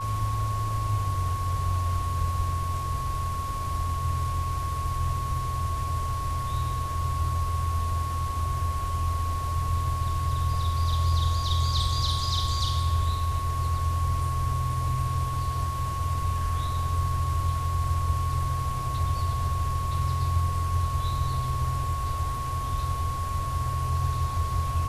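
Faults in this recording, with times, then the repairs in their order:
whine 1.1 kHz -31 dBFS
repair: band-stop 1.1 kHz, Q 30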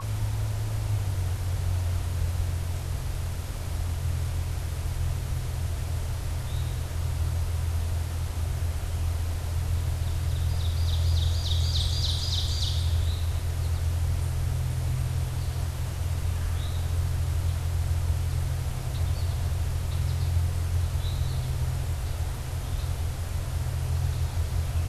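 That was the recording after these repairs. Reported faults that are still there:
nothing left

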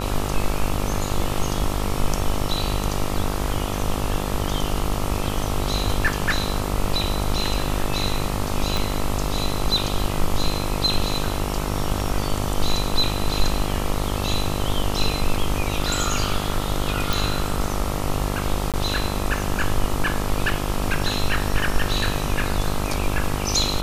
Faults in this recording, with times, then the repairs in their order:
buzz 50 Hz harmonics 27 -27 dBFS
8.77 s: pop
17.13 s: pop
18.72–18.74 s: dropout 17 ms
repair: de-click; de-hum 50 Hz, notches 27; interpolate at 18.72 s, 17 ms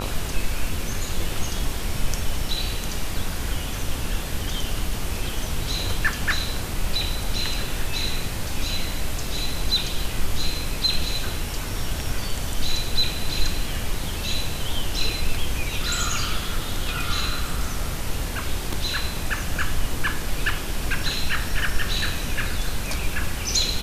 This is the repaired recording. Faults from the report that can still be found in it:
8.77 s: pop

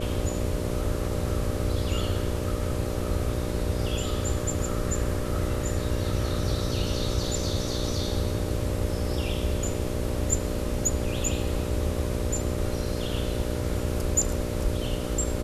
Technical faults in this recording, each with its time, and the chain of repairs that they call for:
buzz 60 Hz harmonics 10 -32 dBFS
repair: de-hum 60 Hz, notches 10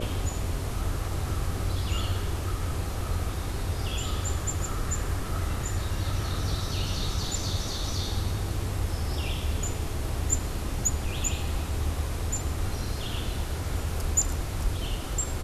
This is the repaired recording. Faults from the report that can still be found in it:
nothing left

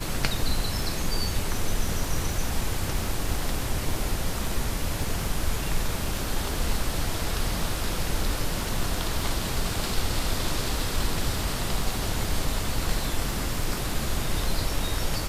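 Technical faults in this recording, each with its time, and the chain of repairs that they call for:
crackle 24 per s -31 dBFS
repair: de-click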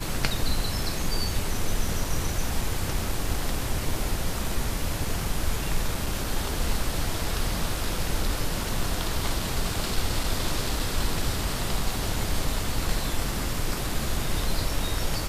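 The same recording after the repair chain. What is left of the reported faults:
nothing left

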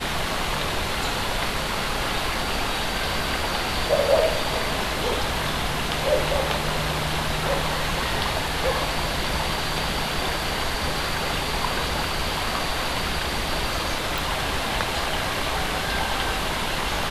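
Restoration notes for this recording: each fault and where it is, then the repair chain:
14.18 s: pop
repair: de-click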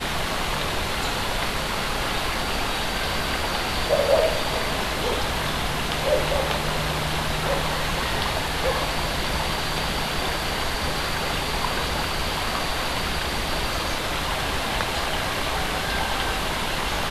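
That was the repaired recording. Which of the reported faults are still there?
nothing left

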